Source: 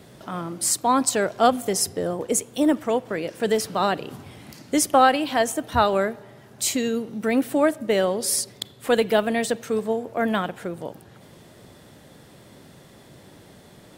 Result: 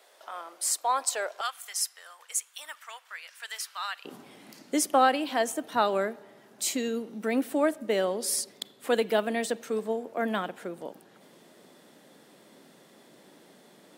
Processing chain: HPF 550 Hz 24 dB/oct, from 1.41 s 1200 Hz, from 4.05 s 200 Hz; gain -5.5 dB

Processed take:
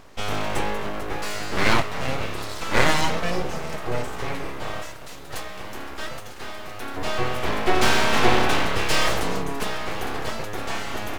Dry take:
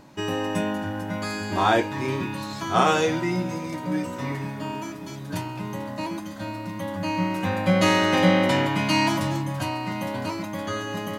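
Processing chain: 4.82–6.97 low shelf 300 Hz -9 dB; full-wave rectifier; gain +3.5 dB

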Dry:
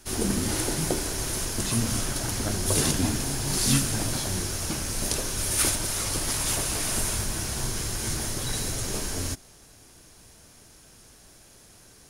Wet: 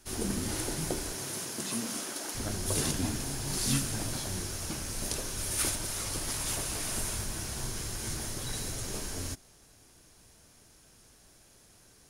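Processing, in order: 1.13–2.34 HPF 99 Hz -> 290 Hz 24 dB/oct; gain -6.5 dB

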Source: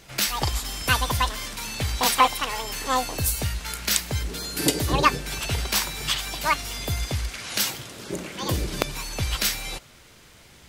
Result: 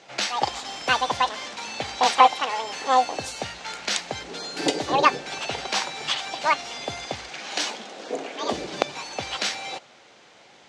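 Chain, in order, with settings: 7.31–8.53 frequency shift +94 Hz; speaker cabinet 260–6400 Hz, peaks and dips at 540 Hz +4 dB, 780 Hz +9 dB, 5100 Hz -3 dB

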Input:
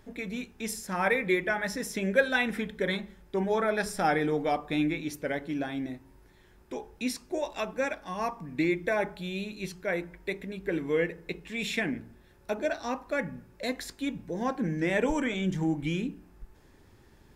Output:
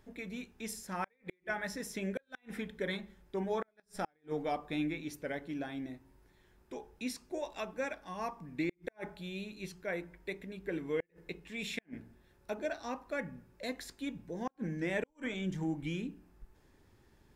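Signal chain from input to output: flipped gate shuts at -17 dBFS, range -41 dB; gain -7 dB

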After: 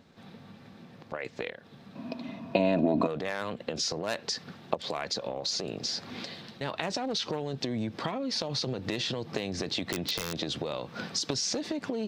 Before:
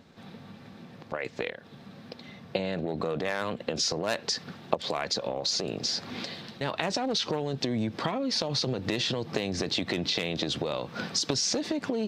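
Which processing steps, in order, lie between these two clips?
1.95–3.07 small resonant body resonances 270/650/960/2500 Hz, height 17 dB, ringing for 40 ms; 9.89–10.36 wrapped overs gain 18.5 dB; gain -3 dB

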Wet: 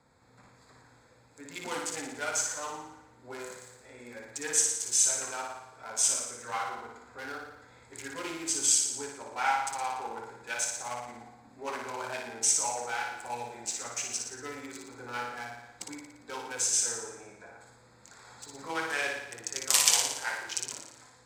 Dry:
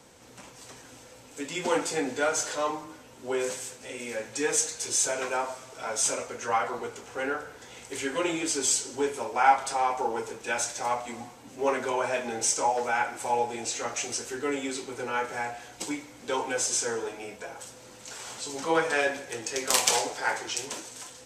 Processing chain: Wiener smoothing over 15 samples; passive tone stack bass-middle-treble 5-5-5; flutter echo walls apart 9.9 m, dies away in 0.82 s; gain +7 dB

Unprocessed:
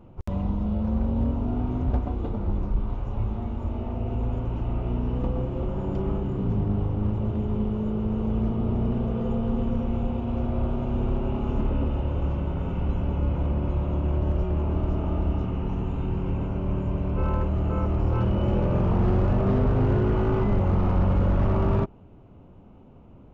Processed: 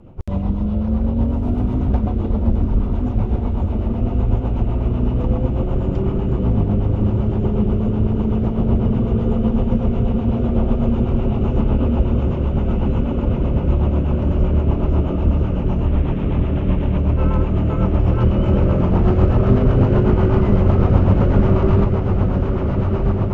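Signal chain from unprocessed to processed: 15.86–16.98 CVSD 16 kbps; diffused feedback echo 1.312 s, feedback 67%, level -4 dB; rotary speaker horn 8 Hz; gain +7.5 dB

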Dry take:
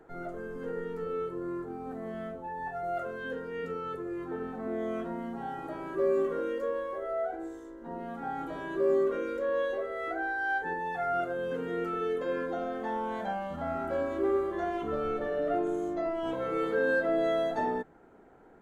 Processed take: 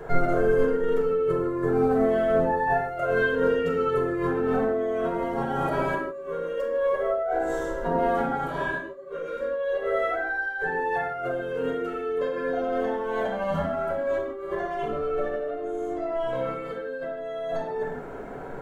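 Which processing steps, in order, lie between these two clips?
negative-ratio compressor -41 dBFS, ratio -1; vibrato 12 Hz 9.4 cents; reverb, pre-delay 7 ms, DRR -1 dB; 8.46–9.4 detuned doubles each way 50 cents -> 31 cents; gain +6.5 dB

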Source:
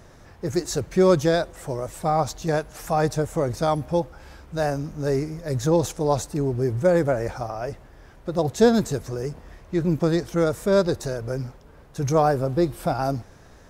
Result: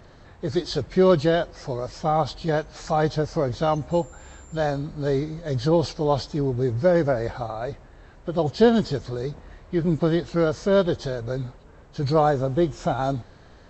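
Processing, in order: nonlinear frequency compression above 2100 Hz 1.5:1; 3.9–4.55 whine 7300 Hz -51 dBFS

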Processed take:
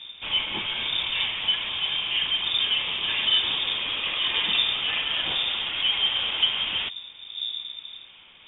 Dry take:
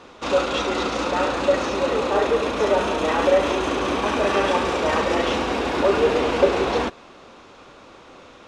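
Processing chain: wind noise 110 Hz -30 dBFS; inverted band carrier 3600 Hz; gain -6 dB

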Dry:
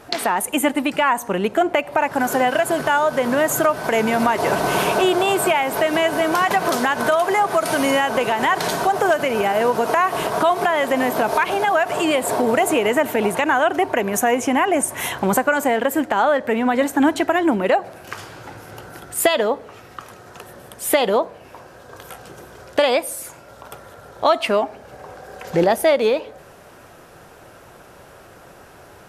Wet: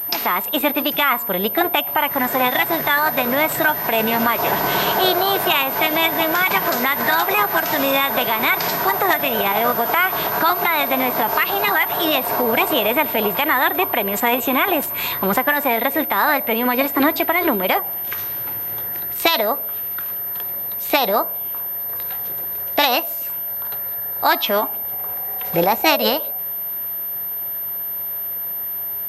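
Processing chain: formant shift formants +3 st; high shelf 4200 Hz +8.5 dB; pulse-width modulation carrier 13000 Hz; gain -1 dB

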